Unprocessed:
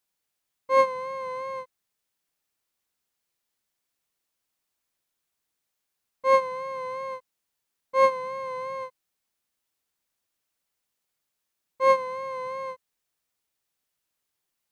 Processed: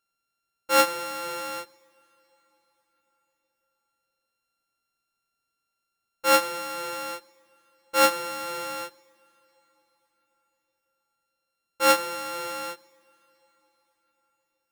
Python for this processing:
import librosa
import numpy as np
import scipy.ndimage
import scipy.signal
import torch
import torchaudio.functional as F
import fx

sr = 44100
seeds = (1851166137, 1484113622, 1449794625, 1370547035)

y = np.r_[np.sort(x[:len(x) // 32 * 32].reshape(-1, 32), axis=1).ravel(), x[len(x) // 32 * 32:]]
y = fx.rev_double_slope(y, sr, seeds[0], early_s=0.5, late_s=4.8, knee_db=-18, drr_db=18.0)